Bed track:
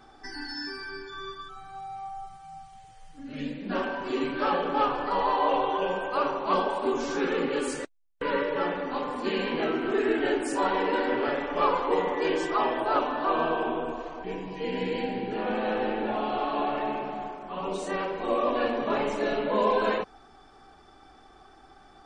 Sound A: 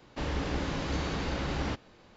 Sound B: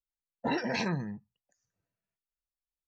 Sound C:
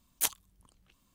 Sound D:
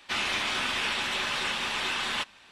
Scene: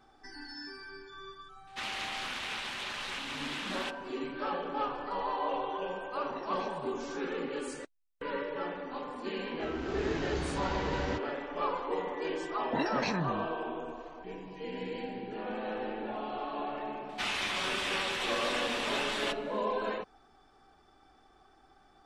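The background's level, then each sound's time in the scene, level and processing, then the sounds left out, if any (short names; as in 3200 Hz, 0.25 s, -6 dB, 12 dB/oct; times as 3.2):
bed track -8.5 dB
1.67 add D -8.5 dB + Doppler distortion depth 0.31 ms
5.85 add B -16.5 dB
9.43 add A -18 dB + AGC gain up to 14.5 dB
12.28 add B -1.5 dB
17.09 add D -4.5 dB
not used: C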